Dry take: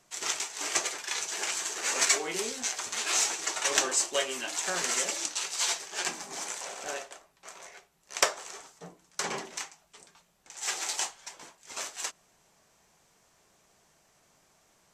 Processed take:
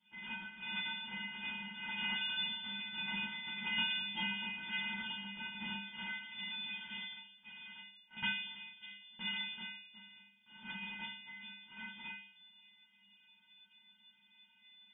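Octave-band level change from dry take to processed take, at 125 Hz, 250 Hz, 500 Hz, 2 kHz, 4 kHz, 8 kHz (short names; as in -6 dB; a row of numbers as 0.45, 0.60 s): +1.5 dB, -2.0 dB, -30.0 dB, -4.5 dB, -5.0 dB, under -40 dB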